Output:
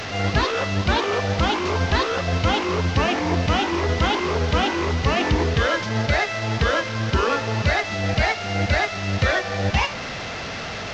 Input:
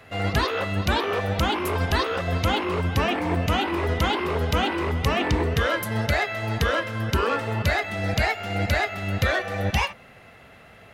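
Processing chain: delta modulation 32 kbps, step -27 dBFS; gain +2.5 dB

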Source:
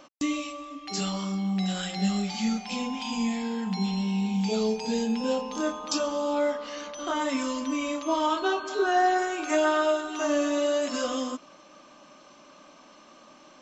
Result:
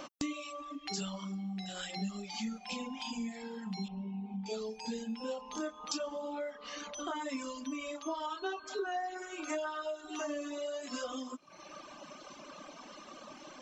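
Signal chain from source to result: compressor 3:1, threshold -45 dBFS, peak gain reduction 19 dB; reverb removal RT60 1.8 s; 3.88–4.46 LPF 1200 Hz 12 dB/oct; gain +6 dB

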